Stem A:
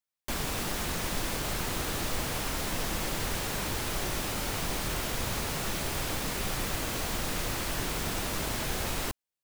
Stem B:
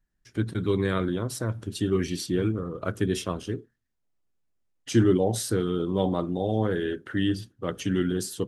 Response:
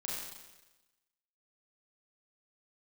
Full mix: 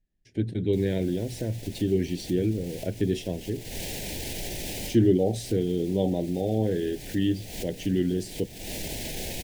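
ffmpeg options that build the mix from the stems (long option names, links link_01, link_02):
-filter_complex "[0:a]alimiter=level_in=5.5dB:limit=-24dB:level=0:latency=1,volume=-5.5dB,acontrast=48,adelay=450,volume=0dB[link_01];[1:a]lowpass=frequency=2800:poles=1,volume=0.5dB,asplit=2[link_02][link_03];[link_03]apad=whole_len=435758[link_04];[link_01][link_04]sidechaincompress=threshold=-39dB:ratio=5:attack=5.7:release=219[link_05];[link_05][link_02]amix=inputs=2:normalize=0,asuperstop=centerf=1200:order=4:qfactor=0.92,bandreject=frequency=60:width_type=h:width=6,bandreject=frequency=120:width_type=h:width=6"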